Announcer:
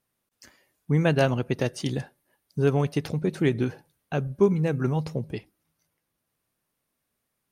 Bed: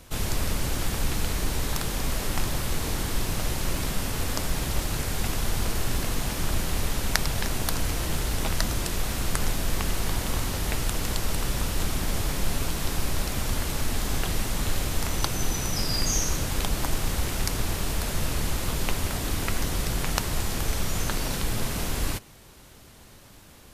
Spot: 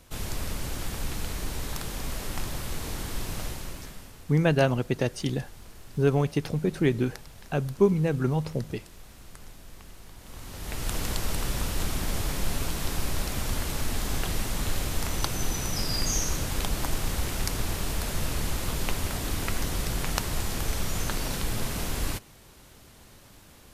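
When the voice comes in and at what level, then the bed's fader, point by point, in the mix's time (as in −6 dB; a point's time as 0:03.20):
3.40 s, −0.5 dB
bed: 0:03.43 −5.5 dB
0:04.23 −20.5 dB
0:10.16 −20.5 dB
0:10.93 −2 dB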